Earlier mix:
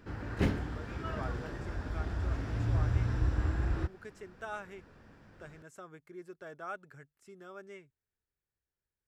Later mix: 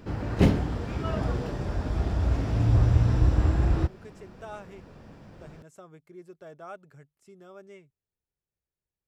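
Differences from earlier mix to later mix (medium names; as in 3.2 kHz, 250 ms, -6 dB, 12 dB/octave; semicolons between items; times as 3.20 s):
background +8.0 dB; master: add fifteen-band graphic EQ 160 Hz +4 dB, 630 Hz +3 dB, 1.6 kHz -7 dB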